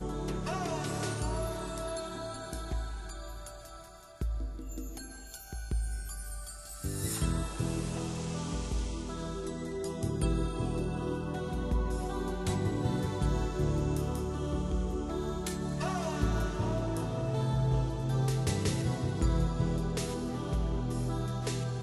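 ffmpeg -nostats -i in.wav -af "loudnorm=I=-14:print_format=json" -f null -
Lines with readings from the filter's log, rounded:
"input_i" : "-33.9",
"input_tp" : "-16.0",
"input_lra" : "8.1",
"input_thresh" : "-44.1",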